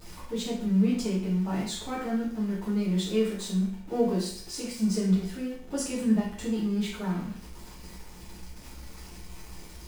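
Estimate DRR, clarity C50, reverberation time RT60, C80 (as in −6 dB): −7.5 dB, 4.0 dB, 0.55 s, 7.5 dB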